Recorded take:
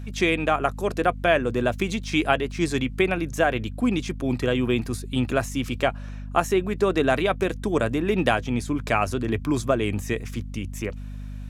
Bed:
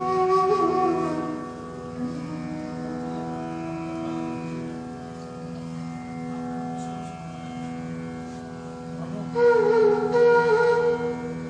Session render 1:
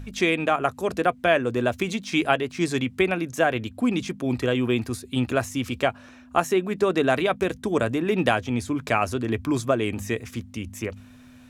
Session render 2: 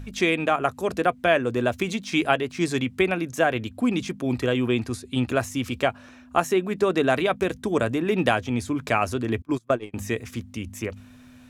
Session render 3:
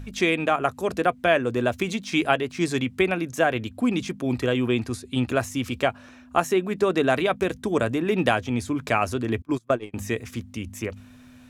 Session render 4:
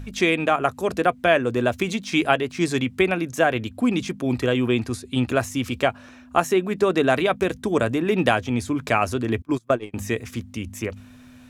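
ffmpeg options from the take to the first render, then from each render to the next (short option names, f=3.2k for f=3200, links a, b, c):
-af "bandreject=f=50:t=h:w=4,bandreject=f=100:t=h:w=4,bandreject=f=150:t=h:w=4,bandreject=f=200:t=h:w=4"
-filter_complex "[0:a]asettb=1/sr,asplit=3[a][b][c];[a]atrim=end=4.694[d];[b]atrim=start=4.69:end=5.28,asetpts=PTS-STARTPTS,afade=t=in:d=0.004:c=qsin,afade=t=out:st=0.586:d=0.004:c=qsin,lowpass=10k[e];[c]atrim=start=5.276[f];[d][e]acrossfade=d=0.004:c1=hsin:c2=qsin[g];[g][f]acrossfade=d=0.004:c1=qsin:c2=hsin,asettb=1/sr,asplit=3[h][i][j];[h]atrim=end=9.424[k];[i]atrim=start=9.42:end=9.94,asetpts=PTS-STARTPTS,afade=t=in:d=0.004:c=qsin,afade=t=out:st=0.516:d=0.004:c=qsin,agate=range=-30dB:threshold=-23dB:ratio=16:release=100:detection=peak[l];[j]atrim=start=9.936[m];[k][l]acrossfade=d=0.004:c1=hsin:c2=qsin[n];[n][m]acrossfade=d=0.004:c1=qsin:c2=hsin"
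-af anull
-af "volume=2dB"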